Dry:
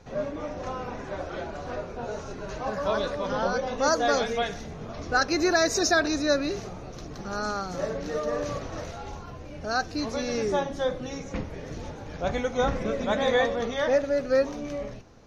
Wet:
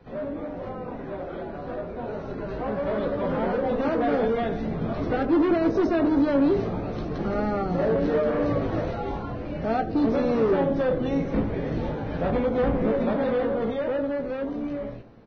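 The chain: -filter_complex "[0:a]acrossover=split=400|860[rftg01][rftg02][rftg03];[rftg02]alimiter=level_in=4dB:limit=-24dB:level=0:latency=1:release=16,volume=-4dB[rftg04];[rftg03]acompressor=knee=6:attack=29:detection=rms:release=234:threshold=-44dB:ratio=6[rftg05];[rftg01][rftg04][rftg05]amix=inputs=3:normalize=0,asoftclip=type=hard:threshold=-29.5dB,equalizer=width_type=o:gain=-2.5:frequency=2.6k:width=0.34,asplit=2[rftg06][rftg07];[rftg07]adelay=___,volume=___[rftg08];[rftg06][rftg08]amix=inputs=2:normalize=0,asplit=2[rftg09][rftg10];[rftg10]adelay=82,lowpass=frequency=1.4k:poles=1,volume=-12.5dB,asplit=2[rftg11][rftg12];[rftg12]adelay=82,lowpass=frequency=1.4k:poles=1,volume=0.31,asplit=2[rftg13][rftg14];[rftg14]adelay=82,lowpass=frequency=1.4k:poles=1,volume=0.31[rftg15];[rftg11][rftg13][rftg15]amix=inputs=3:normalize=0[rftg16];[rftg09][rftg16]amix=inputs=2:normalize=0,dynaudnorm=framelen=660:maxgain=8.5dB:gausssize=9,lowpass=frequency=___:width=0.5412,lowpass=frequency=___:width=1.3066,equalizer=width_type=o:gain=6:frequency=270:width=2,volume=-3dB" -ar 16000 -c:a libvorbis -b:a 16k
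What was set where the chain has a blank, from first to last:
18, -8dB, 3.5k, 3.5k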